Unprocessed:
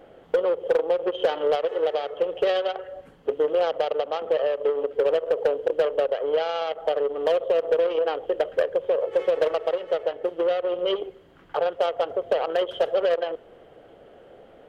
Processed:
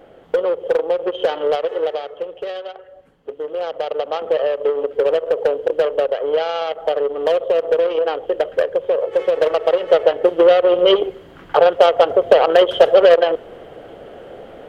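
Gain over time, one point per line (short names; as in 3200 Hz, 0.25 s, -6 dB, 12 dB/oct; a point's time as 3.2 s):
1.79 s +4 dB
2.43 s -5 dB
3.38 s -5 dB
4.11 s +5 dB
9.36 s +5 dB
9.96 s +12 dB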